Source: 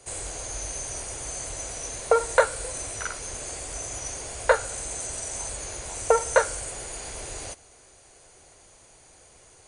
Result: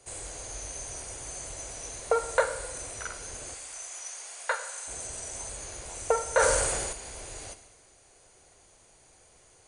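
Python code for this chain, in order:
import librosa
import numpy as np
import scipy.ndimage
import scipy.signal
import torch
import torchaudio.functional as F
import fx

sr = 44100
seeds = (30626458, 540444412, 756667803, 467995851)

y = fx.highpass(x, sr, hz=940.0, slope=12, at=(3.54, 4.88))
y = fx.rev_schroeder(y, sr, rt60_s=1.2, comb_ms=32, drr_db=10.0)
y = fx.sustainer(y, sr, db_per_s=28.0, at=(6.34, 6.93))
y = y * librosa.db_to_amplitude(-5.5)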